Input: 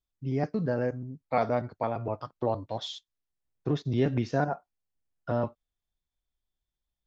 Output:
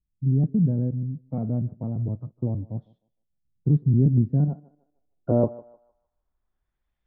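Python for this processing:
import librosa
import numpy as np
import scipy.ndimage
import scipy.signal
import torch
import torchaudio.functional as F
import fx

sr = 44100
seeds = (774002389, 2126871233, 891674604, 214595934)

y = fx.echo_thinned(x, sr, ms=153, feedback_pct=27, hz=320.0, wet_db=-20)
y = fx.filter_sweep_lowpass(y, sr, from_hz=180.0, to_hz=2100.0, start_s=4.45, end_s=6.94, q=1.5)
y = F.gain(torch.from_numpy(y), 8.0).numpy()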